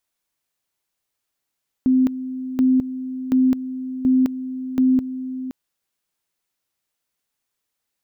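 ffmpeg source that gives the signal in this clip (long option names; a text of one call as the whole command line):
ffmpeg -f lavfi -i "aevalsrc='pow(10,(-12.5-13*gte(mod(t,0.73),0.21))/20)*sin(2*PI*258*t)':duration=3.65:sample_rate=44100" out.wav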